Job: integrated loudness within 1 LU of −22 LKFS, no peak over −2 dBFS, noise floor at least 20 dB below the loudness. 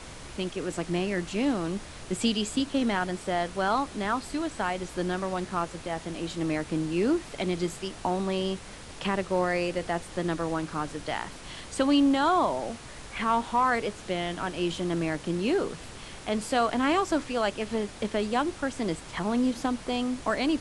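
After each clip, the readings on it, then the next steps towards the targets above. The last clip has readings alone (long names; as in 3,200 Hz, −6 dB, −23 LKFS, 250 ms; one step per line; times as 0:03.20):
background noise floor −44 dBFS; target noise floor −49 dBFS; integrated loudness −29.0 LKFS; sample peak −12.5 dBFS; target loudness −22.0 LKFS
→ noise reduction from a noise print 6 dB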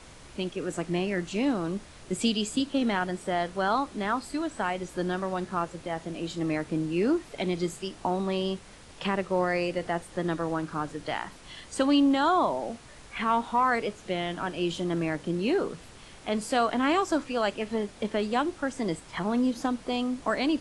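background noise floor −49 dBFS; integrated loudness −29.0 LKFS; sample peak −12.5 dBFS; target loudness −22.0 LKFS
→ level +7 dB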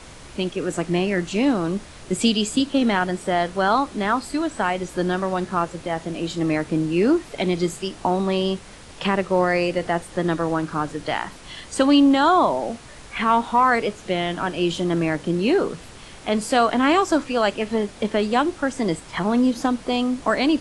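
integrated loudness −22.0 LKFS; sample peak −5.5 dBFS; background noise floor −42 dBFS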